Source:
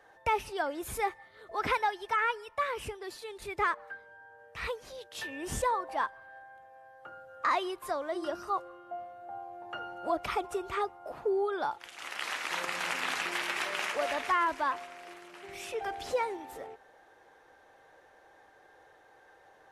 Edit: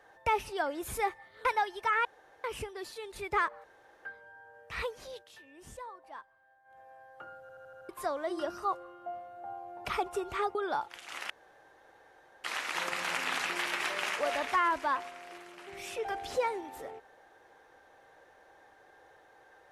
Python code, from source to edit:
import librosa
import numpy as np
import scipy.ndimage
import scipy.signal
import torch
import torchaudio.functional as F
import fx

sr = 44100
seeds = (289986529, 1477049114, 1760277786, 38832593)

y = fx.edit(x, sr, fx.cut(start_s=1.45, length_s=0.26),
    fx.room_tone_fill(start_s=2.31, length_s=0.39),
    fx.insert_room_tone(at_s=3.9, length_s=0.41),
    fx.fade_down_up(start_s=5.01, length_s=1.64, db=-15.5, fade_s=0.16),
    fx.stutter_over(start_s=7.26, slice_s=0.08, count=6),
    fx.cut(start_s=9.7, length_s=0.53),
    fx.cut(start_s=10.93, length_s=0.52),
    fx.insert_room_tone(at_s=12.2, length_s=1.14), tone=tone)